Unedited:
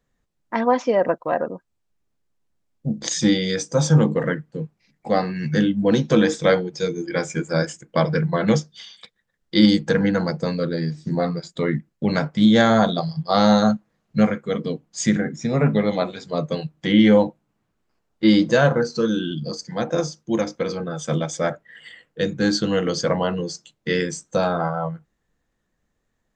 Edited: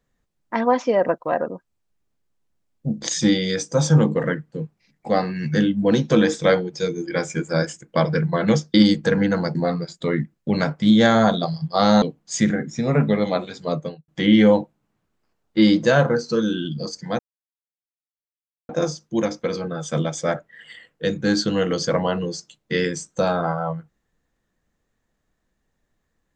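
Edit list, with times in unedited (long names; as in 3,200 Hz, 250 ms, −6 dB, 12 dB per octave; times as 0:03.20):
0:08.74–0:09.57: remove
0:10.38–0:11.10: remove
0:13.57–0:14.68: remove
0:16.37–0:16.74: fade out and dull
0:19.85: splice in silence 1.50 s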